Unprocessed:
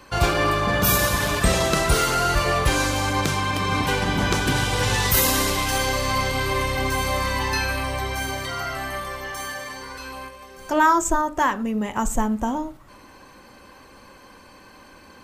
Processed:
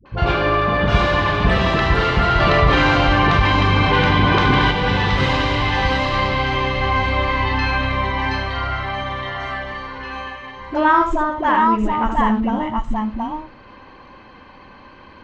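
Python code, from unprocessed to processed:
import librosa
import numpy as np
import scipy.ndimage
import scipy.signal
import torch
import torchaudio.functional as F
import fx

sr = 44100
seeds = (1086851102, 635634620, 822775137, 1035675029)

y = fx.echo_multitap(x, sr, ms=(75, 723, 724), db=(-7.0, -7.0, -4.5))
y = fx.quant_float(y, sr, bits=4)
y = scipy.signal.sosfilt(scipy.signal.butter(4, 3600.0, 'lowpass', fs=sr, output='sos'), y)
y = fx.dispersion(y, sr, late='highs', ms=58.0, hz=470.0)
y = fx.env_flatten(y, sr, amount_pct=50, at=(2.4, 4.71))
y = F.gain(torch.from_numpy(y), 2.0).numpy()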